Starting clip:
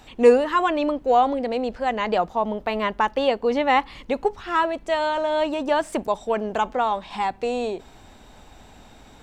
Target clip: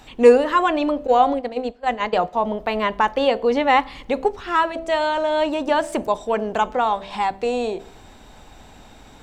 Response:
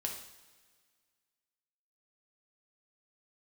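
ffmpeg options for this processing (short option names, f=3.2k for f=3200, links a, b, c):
-filter_complex "[0:a]bandreject=f=65.61:t=h:w=4,bandreject=f=131.22:t=h:w=4,bandreject=f=196.83:t=h:w=4,bandreject=f=262.44:t=h:w=4,bandreject=f=328.05:t=h:w=4,bandreject=f=393.66:t=h:w=4,bandreject=f=459.27:t=h:w=4,bandreject=f=524.88:t=h:w=4,bandreject=f=590.49:t=h:w=4,bandreject=f=656.1:t=h:w=4,bandreject=f=721.71:t=h:w=4,asettb=1/sr,asplit=3[a][b][c];[a]atrim=end=1.074[d];[b]atrim=start=1.07:end=2.33,asetpts=PTS-STARTPTS,afade=t=in:d=0.004:c=qsin,afade=t=out:st=1.256:d=0.004:c=qsin,agate=range=-23dB:threshold=-24dB:ratio=16:detection=peak[e];[c]atrim=start=2.326[f];[d][e]acrossfade=d=0.004:c1=hsin:c2=qsin[g];[g][f]acrossfade=d=0.004:c1=qsin:c2=hsin,asplit=2[h][i];[1:a]atrim=start_sample=2205,asetrate=70560,aresample=44100[j];[i][j]afir=irnorm=-1:irlink=0,volume=-11.5dB[k];[h][k]amix=inputs=2:normalize=0,volume=1.5dB"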